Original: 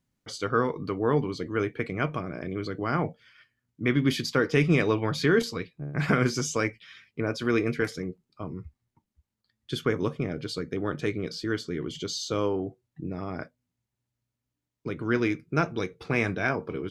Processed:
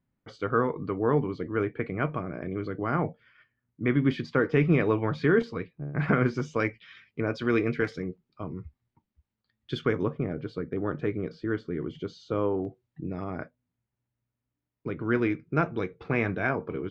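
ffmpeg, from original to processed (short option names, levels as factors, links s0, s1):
-af "asetnsamples=n=441:p=0,asendcmd='6.6 lowpass f 3400;10.03 lowpass f 1600;12.65 lowpass f 3800;13.24 lowpass f 2300',lowpass=2000"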